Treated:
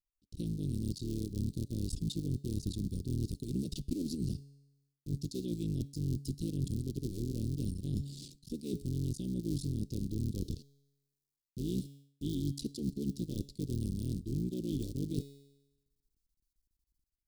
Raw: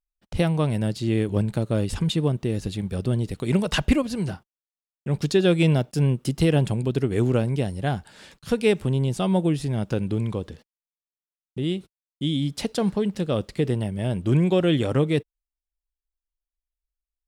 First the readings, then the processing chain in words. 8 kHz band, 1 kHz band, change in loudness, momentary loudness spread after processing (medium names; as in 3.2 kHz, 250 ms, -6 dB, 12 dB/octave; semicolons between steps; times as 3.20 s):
-8.5 dB, under -40 dB, -13.5 dB, 5 LU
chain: cycle switcher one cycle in 3, muted; level rider gain up to 12.5 dB; feedback comb 140 Hz, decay 1 s, harmonics all, mix 40%; reverse; compression 10:1, threshold -30 dBFS, peak gain reduction 19 dB; reverse; Chebyshev band-stop 330–4300 Hz, order 3